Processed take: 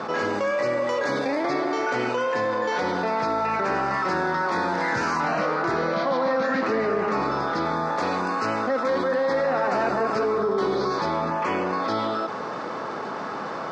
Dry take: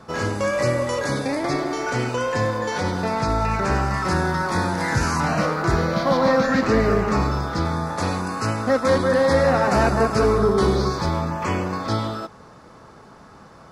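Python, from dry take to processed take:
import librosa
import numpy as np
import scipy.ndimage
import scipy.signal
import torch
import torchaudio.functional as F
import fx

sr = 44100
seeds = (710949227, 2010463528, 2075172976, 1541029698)

y = scipy.signal.sosfilt(scipy.signal.butter(2, 300.0, 'highpass', fs=sr, output='sos'), x)
y = fx.air_absorb(y, sr, metres=150.0)
y = fx.env_flatten(y, sr, amount_pct=70)
y = y * 10.0 ** (-5.5 / 20.0)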